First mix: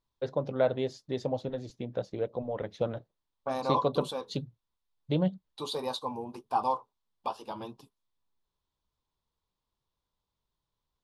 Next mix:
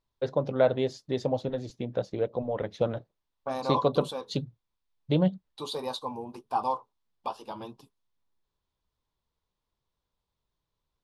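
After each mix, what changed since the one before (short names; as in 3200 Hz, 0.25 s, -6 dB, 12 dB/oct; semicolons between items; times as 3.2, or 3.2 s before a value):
first voice +3.5 dB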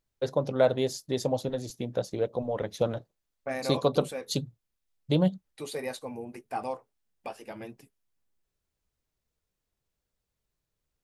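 first voice: remove LPF 3600 Hz 12 dB/oct; second voice: remove EQ curve 690 Hz 0 dB, 1000 Hz +15 dB, 2000 Hz -16 dB, 3500 Hz +10 dB, 7600 Hz -5 dB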